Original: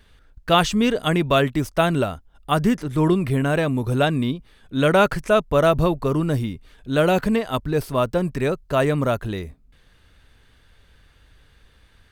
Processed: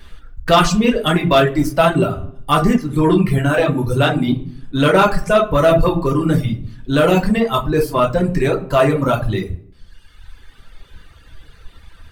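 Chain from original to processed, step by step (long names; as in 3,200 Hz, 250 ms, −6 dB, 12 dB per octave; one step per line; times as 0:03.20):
rectangular room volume 54 cubic metres, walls mixed, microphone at 0.75 metres
reverb reduction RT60 1.4 s
hum removal 132.3 Hz, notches 10
in parallel at +2 dB: downward compressor, threshold −27 dBFS, peak gain reduction 18.5 dB
on the sum: soft clipping −4.5 dBFS, distortion −20 dB
level +1.5 dB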